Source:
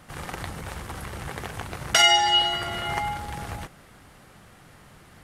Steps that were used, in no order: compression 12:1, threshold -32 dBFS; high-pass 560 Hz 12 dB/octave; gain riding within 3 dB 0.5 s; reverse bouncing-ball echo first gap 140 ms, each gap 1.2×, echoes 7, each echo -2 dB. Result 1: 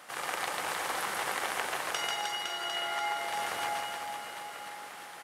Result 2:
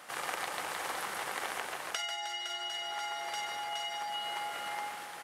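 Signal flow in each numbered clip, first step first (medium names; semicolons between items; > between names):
high-pass > compression > gain riding > reverse bouncing-ball echo; reverse bouncing-ball echo > compression > high-pass > gain riding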